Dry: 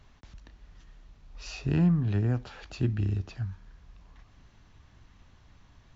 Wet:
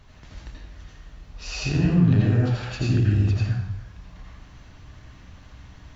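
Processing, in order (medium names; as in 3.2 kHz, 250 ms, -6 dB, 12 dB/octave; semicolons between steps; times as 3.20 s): peak limiter -22 dBFS, peak gain reduction 7 dB; reverberation RT60 0.75 s, pre-delay 73 ms, DRR -5 dB; trim +5 dB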